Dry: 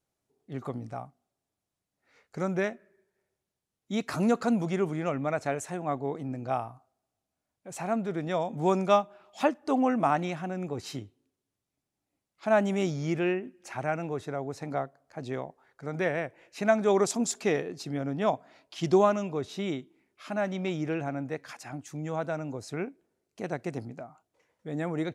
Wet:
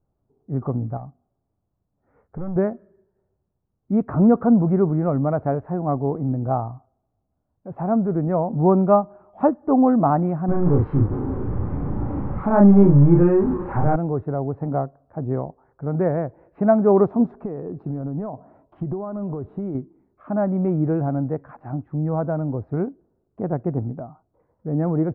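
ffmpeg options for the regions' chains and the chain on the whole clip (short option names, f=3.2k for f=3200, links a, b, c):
-filter_complex "[0:a]asettb=1/sr,asplit=3[a][b][c];[a]atrim=end=0.974[d];[b]atrim=start=0.97:end=2.56,asetpts=PTS-STARTPTS,afade=t=in:d=0.004:c=qsin,afade=t=out:st=1.586:d=0.004:c=qsin,asoftclip=type=hard:threshold=-32dB,acompressor=threshold=-41dB:ratio=3:attack=3.2:release=140:knee=1:detection=peak[e];[c]atrim=start=2.556[f];[d][e]acrossfade=d=0.004:c1=hsin:c2=qsin[g];[g][f]acrossfade=d=0.004:c1=qsin:c2=hsin,asettb=1/sr,asplit=3[h][i][j];[h]atrim=end=10.484[k];[i]atrim=start=10.48:end=13.96,asetpts=PTS-STARTPTS,afade=t=in:d=0.004:c=qsin,afade=t=out:st=3.476:d=0.004:c=qsin,aeval=exprs='val(0)+0.5*0.0316*sgn(val(0))':c=same,bandreject=f=670:w=5.7,asplit=2[l][m];[m]adelay=35,volume=-2.5dB[n];[l][n]amix=inputs=2:normalize=0,atrim=end_sample=153468[o];[j]atrim=start=13.956[p];[k][o]acrossfade=d=0.004:c1=hsin:c2=qsin[q];[q][p]acrossfade=d=0.004:c1=qsin:c2=hsin,asettb=1/sr,asplit=3[r][s][t];[r]atrim=end=17.394[u];[s]atrim=start=17.39:end=19.75,asetpts=PTS-STARTPTS,afade=t=in:d=0.004:c=qsin,afade=t=out:st=2.356:d=0.004:c=qsin,equalizer=f=2.2k:w=1.5:g=-3,acompressor=threshold=-34dB:ratio=8:attack=3.2:release=140:knee=1:detection=peak[v];[t]atrim=start=19.746[w];[u][v]acrossfade=d=0.004:c1=hsin:c2=qsin[x];[x][w]acrossfade=d=0.004:c1=qsin:c2=hsin,lowpass=f=1.2k:w=0.5412,lowpass=f=1.2k:w=1.3066,aemphasis=mode=reproduction:type=bsi,volume=6dB"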